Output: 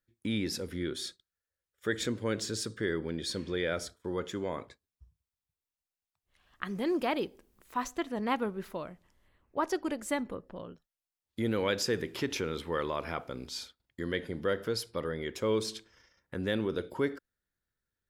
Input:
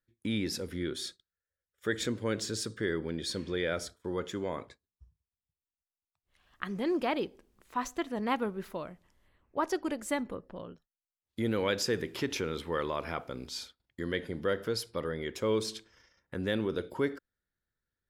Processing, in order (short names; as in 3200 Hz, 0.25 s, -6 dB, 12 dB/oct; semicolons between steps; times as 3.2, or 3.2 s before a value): 6.67–7.84 high shelf 11000 Hz +11 dB